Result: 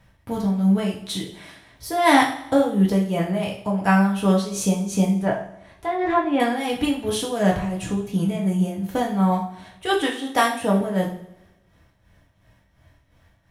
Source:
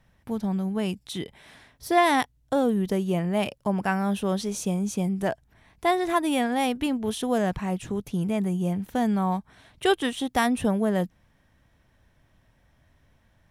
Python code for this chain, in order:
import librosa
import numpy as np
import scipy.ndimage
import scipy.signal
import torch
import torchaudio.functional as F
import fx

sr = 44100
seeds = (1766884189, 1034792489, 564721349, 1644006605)

p1 = fx.env_lowpass_down(x, sr, base_hz=2000.0, full_db=-21.0, at=(5.2, 6.4))
p2 = fx.highpass(p1, sr, hz=250.0, slope=12, at=(10.01, 10.81))
p3 = fx.rider(p2, sr, range_db=3, speed_s=2.0)
p4 = p2 + (p3 * 10.0 ** (3.0 / 20.0))
p5 = p4 * (1.0 - 0.71 / 2.0 + 0.71 / 2.0 * np.cos(2.0 * np.pi * 2.8 * (np.arange(len(p4)) / sr)))
p6 = p5 + fx.echo_feedback(p5, sr, ms=82, feedback_pct=57, wet_db=-17.5, dry=0)
p7 = fx.rev_double_slope(p6, sr, seeds[0], early_s=0.42, late_s=1.6, knee_db=-27, drr_db=-2.5)
y = p7 * 10.0 ** (-4.5 / 20.0)